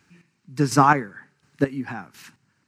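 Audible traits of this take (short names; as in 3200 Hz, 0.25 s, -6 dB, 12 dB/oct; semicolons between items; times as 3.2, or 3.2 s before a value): chopped level 1.4 Hz, depth 60%, duty 30%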